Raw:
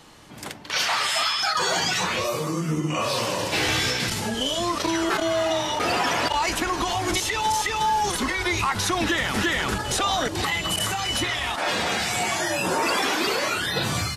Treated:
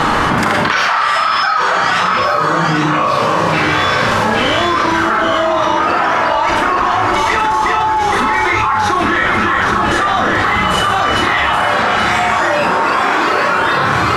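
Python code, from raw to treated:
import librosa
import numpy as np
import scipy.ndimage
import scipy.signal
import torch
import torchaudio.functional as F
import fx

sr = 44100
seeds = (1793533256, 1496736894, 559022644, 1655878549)

y = fx.lowpass(x, sr, hz=1800.0, slope=6)
y = fx.peak_eq(y, sr, hz=1300.0, db=11.5, octaves=1.2)
y = y + 10.0 ** (-4.5 / 20.0) * np.pad(y, (int(826 * sr / 1000.0), 0))[:len(y)]
y = fx.rev_schroeder(y, sr, rt60_s=0.38, comb_ms=29, drr_db=1.0)
y = fx.env_flatten(y, sr, amount_pct=100)
y = y * 10.0 ** (-3.0 / 20.0)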